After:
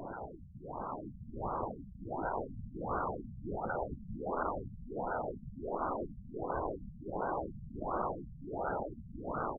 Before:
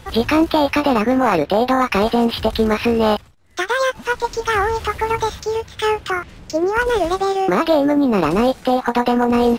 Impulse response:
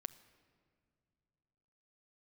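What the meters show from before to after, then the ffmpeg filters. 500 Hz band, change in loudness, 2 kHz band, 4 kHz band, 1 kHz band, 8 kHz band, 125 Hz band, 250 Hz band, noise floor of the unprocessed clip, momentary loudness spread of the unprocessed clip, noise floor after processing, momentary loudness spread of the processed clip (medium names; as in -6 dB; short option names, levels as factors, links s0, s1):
-22.0 dB, -21.5 dB, -25.0 dB, under -40 dB, -18.5 dB, under -40 dB, -14.5 dB, -25.0 dB, -42 dBFS, 6 LU, -52 dBFS, 8 LU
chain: -filter_complex "[0:a]aeval=exprs='if(lt(val(0),0),0.251*val(0),val(0))':c=same,afftfilt=real='re*lt(hypot(re,im),0.126)':imag='im*lt(hypot(re,im),0.126)':win_size=1024:overlap=0.75,afftfilt=real='hypot(re,im)*cos(2*PI*random(0))':imag='hypot(re,im)*sin(2*PI*random(1))':win_size=512:overlap=0.75,asubboost=boost=7.5:cutoff=56,afreqshift=71,asplit=2[s0][s1];[s1]asplit=6[s2][s3][s4][s5][s6][s7];[s2]adelay=163,afreqshift=110,volume=0.596[s8];[s3]adelay=326,afreqshift=220,volume=0.285[s9];[s4]adelay=489,afreqshift=330,volume=0.136[s10];[s5]adelay=652,afreqshift=440,volume=0.0661[s11];[s6]adelay=815,afreqshift=550,volume=0.0316[s12];[s7]adelay=978,afreqshift=660,volume=0.0151[s13];[s8][s9][s10][s11][s12][s13]amix=inputs=6:normalize=0[s14];[s0][s14]amix=inputs=2:normalize=0,acrusher=samples=32:mix=1:aa=0.000001:lfo=1:lforange=19.2:lforate=0.61,acompressor=threshold=0.0112:ratio=20,equalizer=f=7400:t=o:w=0.3:g=14,afftfilt=real='re*lt(hypot(re,im),0.0178)':imag='im*lt(hypot(re,im),0.0178)':win_size=1024:overlap=0.75,dynaudnorm=f=110:g=21:m=2.24,afftfilt=real='re*lt(b*sr/1024,210*pow(1600/210,0.5+0.5*sin(2*PI*1.4*pts/sr)))':imag='im*lt(b*sr/1024,210*pow(1600/210,0.5+0.5*sin(2*PI*1.4*pts/sr)))':win_size=1024:overlap=0.75,volume=3.55"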